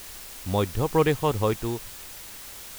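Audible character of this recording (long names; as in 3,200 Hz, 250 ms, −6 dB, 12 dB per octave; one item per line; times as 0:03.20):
tremolo saw down 1.1 Hz, depth 45%
a quantiser's noise floor 8 bits, dither triangular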